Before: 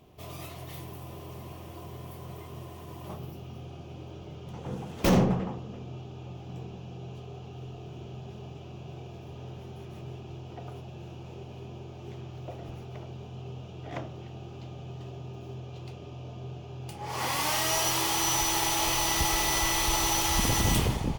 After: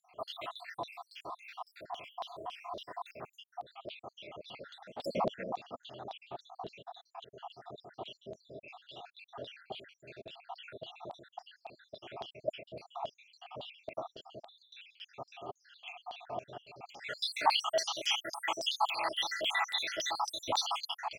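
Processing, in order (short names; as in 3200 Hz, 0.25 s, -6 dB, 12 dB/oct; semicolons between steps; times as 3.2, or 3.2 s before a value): random spectral dropouts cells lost 76%; vocal rider within 4 dB 0.5 s; LFO band-pass saw down 3.6 Hz 790–3900 Hz; fifteen-band EQ 250 Hz +5 dB, 630 Hz +10 dB, 4000 Hz +7 dB; gain +8.5 dB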